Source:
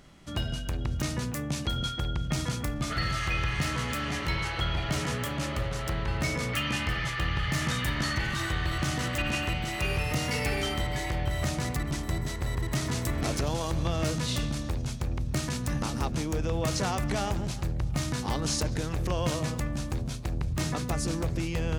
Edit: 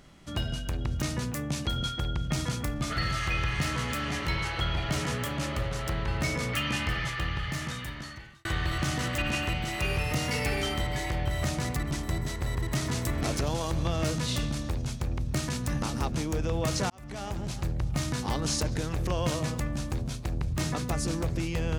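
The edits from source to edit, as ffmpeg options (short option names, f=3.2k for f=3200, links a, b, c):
-filter_complex "[0:a]asplit=3[a][b][c];[a]atrim=end=8.45,asetpts=PTS-STARTPTS,afade=t=out:st=6.95:d=1.5[d];[b]atrim=start=8.45:end=16.9,asetpts=PTS-STARTPTS,afade=t=in:d=0.004:c=hsin,afade=t=out:st=8.446:d=0.004:c=hsin[e];[c]atrim=start=16.9,asetpts=PTS-STARTPTS,afade=t=in:d=0.72[f];[d][e][f]concat=n=3:v=0:a=1"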